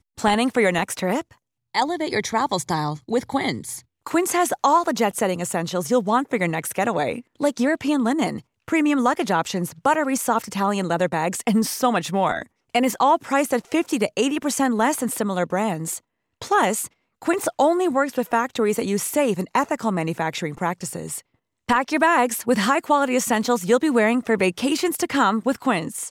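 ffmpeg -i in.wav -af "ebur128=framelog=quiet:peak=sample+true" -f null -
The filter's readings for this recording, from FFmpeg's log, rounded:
Integrated loudness:
  I:         -21.8 LUFS
  Threshold: -32.0 LUFS
Loudness range:
  LRA:         3.2 LU
  Threshold: -42.1 LUFS
  LRA low:   -23.4 LUFS
  LRA high:  -20.2 LUFS
Sample peak:
  Peak:       -6.5 dBFS
True peak:
  Peak:       -6.5 dBFS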